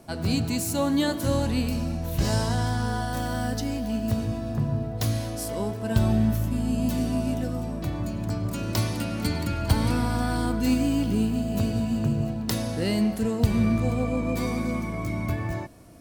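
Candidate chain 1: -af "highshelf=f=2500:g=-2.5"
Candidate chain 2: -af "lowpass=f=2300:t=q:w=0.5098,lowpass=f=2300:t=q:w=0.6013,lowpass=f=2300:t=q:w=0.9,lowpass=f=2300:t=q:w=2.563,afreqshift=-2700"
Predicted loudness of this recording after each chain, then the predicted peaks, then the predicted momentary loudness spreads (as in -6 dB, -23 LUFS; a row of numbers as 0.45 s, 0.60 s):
-26.5 LUFS, -22.5 LUFS; -8.5 dBFS, -8.5 dBFS; 6 LU, 7 LU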